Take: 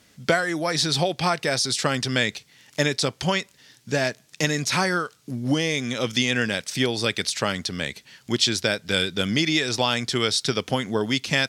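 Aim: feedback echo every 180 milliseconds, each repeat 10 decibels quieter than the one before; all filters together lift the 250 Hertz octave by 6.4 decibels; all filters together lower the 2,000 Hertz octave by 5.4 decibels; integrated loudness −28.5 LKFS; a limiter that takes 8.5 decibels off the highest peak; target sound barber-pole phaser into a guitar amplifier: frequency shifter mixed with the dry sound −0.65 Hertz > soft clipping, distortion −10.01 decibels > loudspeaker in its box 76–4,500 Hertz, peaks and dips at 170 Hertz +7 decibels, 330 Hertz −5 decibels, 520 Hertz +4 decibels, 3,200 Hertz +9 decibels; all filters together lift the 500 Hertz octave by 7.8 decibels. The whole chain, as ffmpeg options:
ffmpeg -i in.wav -filter_complex "[0:a]equalizer=frequency=250:width_type=o:gain=6.5,equalizer=frequency=500:width_type=o:gain=6,equalizer=frequency=2000:width_type=o:gain=-8.5,alimiter=limit=-11dB:level=0:latency=1,aecho=1:1:180|360|540|720:0.316|0.101|0.0324|0.0104,asplit=2[link_01][link_02];[link_02]afreqshift=-0.65[link_03];[link_01][link_03]amix=inputs=2:normalize=1,asoftclip=threshold=-24dB,highpass=76,equalizer=frequency=170:width_type=q:width=4:gain=7,equalizer=frequency=330:width_type=q:width=4:gain=-5,equalizer=frequency=520:width_type=q:width=4:gain=4,equalizer=frequency=3200:width_type=q:width=4:gain=9,lowpass=frequency=4500:width=0.5412,lowpass=frequency=4500:width=1.3066" out.wav

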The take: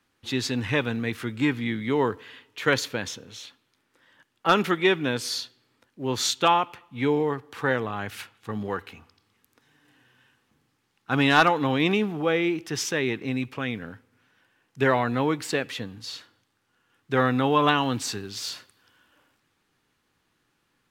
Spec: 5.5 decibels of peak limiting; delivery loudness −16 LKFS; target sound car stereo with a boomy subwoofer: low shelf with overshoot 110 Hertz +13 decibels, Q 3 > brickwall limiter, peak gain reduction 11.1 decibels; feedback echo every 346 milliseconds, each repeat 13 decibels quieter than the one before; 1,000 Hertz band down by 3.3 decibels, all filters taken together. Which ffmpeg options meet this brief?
ffmpeg -i in.wav -af "equalizer=frequency=1000:width_type=o:gain=-4,alimiter=limit=-13dB:level=0:latency=1,lowshelf=frequency=110:width_type=q:width=3:gain=13,aecho=1:1:346|692|1038:0.224|0.0493|0.0108,volume=18.5dB,alimiter=limit=-6dB:level=0:latency=1" out.wav

